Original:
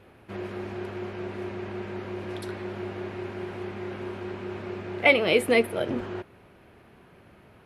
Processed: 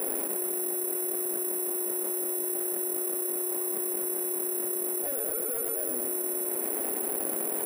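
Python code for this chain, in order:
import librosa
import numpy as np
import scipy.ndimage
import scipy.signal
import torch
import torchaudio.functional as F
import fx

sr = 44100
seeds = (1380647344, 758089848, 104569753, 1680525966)

y = scipy.signal.medfilt(x, 41)
y = scipy.signal.sosfilt(scipy.signal.butter(4, 310.0, 'highpass', fs=sr, output='sos'), y)
y = fx.high_shelf(y, sr, hz=5300.0, db=8.0)
y = 10.0 ** (-28.5 / 20.0) * np.tanh(y / 10.0 ** (-28.5 / 20.0))
y = fx.air_absorb(y, sr, metres=270.0)
y = fx.echo_feedback(y, sr, ms=111, feedback_pct=54, wet_db=-7.5)
y = (np.kron(y[::4], np.eye(4)[0]) * 4)[:len(y)]
y = fx.env_flatten(y, sr, amount_pct=100)
y = F.gain(torch.from_numpy(y), -8.0).numpy()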